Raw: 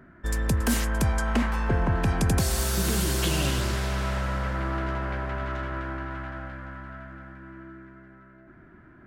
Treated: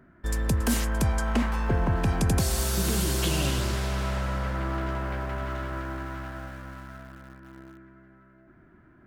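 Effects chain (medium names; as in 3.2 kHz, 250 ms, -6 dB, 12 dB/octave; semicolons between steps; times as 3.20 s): peaking EQ 1.7 kHz -2.5 dB 0.89 oct; in parallel at -6 dB: small samples zeroed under -37.5 dBFS; on the sum: trim -4 dB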